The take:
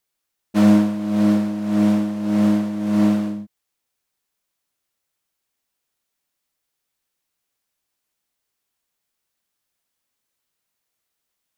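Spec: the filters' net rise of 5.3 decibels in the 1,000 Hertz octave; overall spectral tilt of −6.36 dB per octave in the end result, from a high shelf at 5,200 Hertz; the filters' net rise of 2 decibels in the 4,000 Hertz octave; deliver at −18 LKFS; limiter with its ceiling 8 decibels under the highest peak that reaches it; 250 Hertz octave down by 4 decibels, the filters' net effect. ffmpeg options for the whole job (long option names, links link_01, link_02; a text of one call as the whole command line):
ffmpeg -i in.wav -af "equalizer=frequency=250:width_type=o:gain=-5.5,equalizer=frequency=1000:width_type=o:gain=7,equalizer=frequency=4000:width_type=o:gain=4.5,highshelf=frequency=5200:gain=-5.5,volume=6.5dB,alimiter=limit=-8dB:level=0:latency=1" out.wav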